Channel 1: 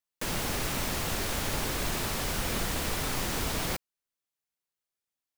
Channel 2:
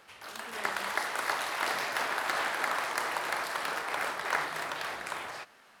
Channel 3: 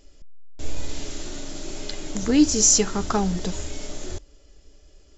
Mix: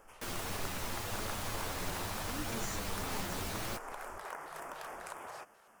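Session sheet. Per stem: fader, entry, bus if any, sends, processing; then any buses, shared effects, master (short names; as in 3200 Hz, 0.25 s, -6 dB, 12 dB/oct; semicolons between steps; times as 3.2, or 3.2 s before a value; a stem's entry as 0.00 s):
-5.5 dB, 0.00 s, no bus, no send, chorus voices 2, 0.79 Hz, delay 10 ms, depth 1.4 ms
+0.5 dB, 0.00 s, bus A, no send, LFO notch square 3.7 Hz 270–4000 Hz
-14.5 dB, 0.00 s, bus A, no send, dry
bus A: 0.0 dB, graphic EQ 125/2000/4000 Hz -4/-8/-9 dB; compressor 6:1, threshold -41 dBFS, peak gain reduction 15 dB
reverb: off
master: dry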